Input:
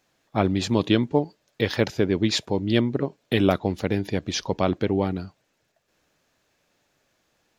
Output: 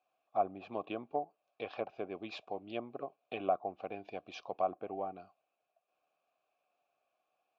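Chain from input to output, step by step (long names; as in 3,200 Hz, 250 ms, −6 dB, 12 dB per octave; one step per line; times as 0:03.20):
formant filter a
treble cut that deepens with the level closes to 1,300 Hz, closed at −32.5 dBFS
level −1 dB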